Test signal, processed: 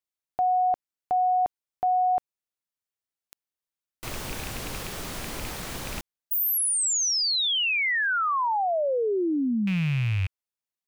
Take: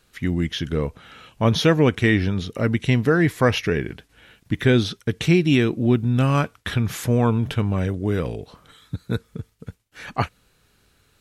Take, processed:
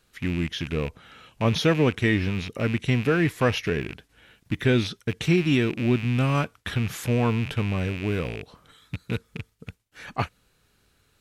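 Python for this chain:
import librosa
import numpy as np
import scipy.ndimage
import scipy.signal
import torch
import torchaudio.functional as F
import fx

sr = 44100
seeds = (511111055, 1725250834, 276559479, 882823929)

y = fx.rattle_buzz(x, sr, strikes_db=-29.0, level_db=-20.0)
y = F.gain(torch.from_numpy(y), -4.0).numpy()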